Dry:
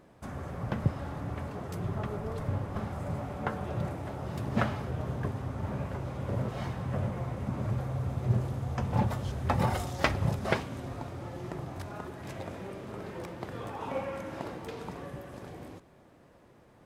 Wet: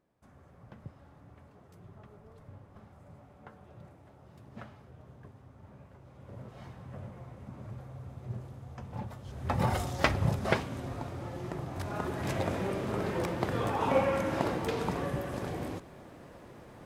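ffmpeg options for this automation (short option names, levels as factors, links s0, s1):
-af "volume=2.51,afade=t=in:st=5.99:d=0.69:silence=0.473151,afade=t=in:st=9.24:d=0.5:silence=0.237137,afade=t=in:st=11.7:d=0.5:silence=0.421697"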